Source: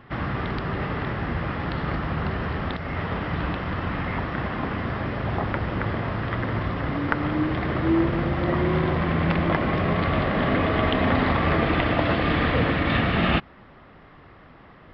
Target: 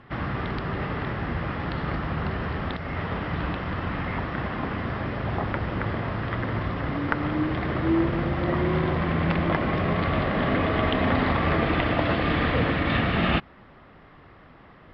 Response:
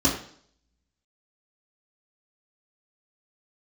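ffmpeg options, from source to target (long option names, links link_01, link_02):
-af "lowpass=9900,volume=-1.5dB"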